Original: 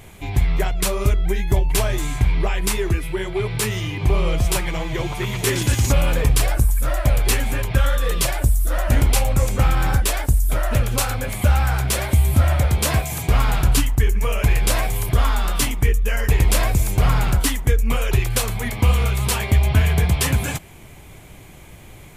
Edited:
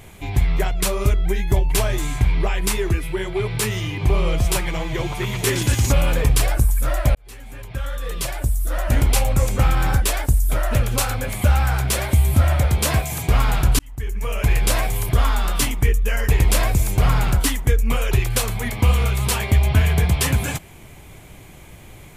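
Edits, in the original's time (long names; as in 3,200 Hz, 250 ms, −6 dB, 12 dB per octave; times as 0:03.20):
0:07.15–0:09.19: fade in
0:13.79–0:14.55: fade in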